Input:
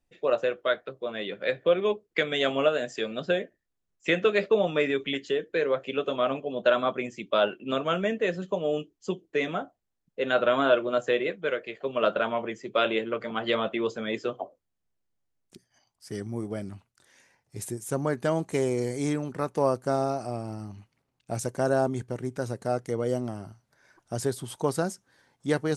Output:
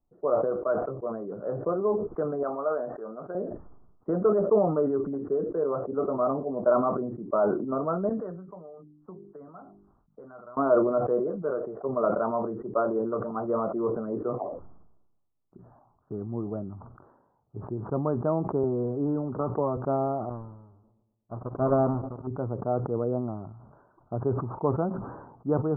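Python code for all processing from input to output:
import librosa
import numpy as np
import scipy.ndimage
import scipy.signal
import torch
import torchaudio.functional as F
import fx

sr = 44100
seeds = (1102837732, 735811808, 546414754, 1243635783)

y = fx.chain(x, sr, fx.highpass(hz=1000.0, slope=6),
    fx.quant_float(bits=4), at=(2.43, 3.35))
y = fx.chain(y, sr, fx.tone_stack(knobs='5-5-5'),
    fx.hum_notches(base_hz=50, count=8),
    fx.band_squash(depth_pct=100), at=(8.09, 10.57))
y = fx.chain(y, sr, fx.notch_comb(f0_hz=170.0),
    fx.band_squash(depth_pct=70), at=(18.63, 19.77))
y = fx.chain(y, sr, fx.halfwave_hold(),
    fx.echo_filtered(ms=116, feedback_pct=80, hz=1500.0, wet_db=-22),
    fx.upward_expand(threshold_db=-35.0, expansion=2.5), at=(20.29, 22.27))
y = scipy.signal.sosfilt(scipy.signal.butter(12, 1300.0, 'lowpass', fs=sr, output='sos'), y)
y = fx.notch(y, sr, hz=520.0, q=14.0)
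y = fx.sustainer(y, sr, db_per_s=52.0)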